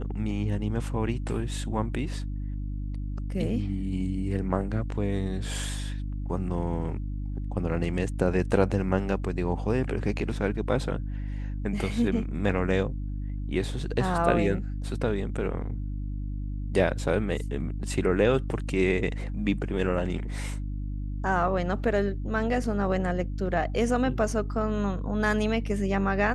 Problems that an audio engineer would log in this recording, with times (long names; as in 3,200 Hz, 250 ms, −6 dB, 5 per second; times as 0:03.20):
mains hum 50 Hz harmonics 6 −32 dBFS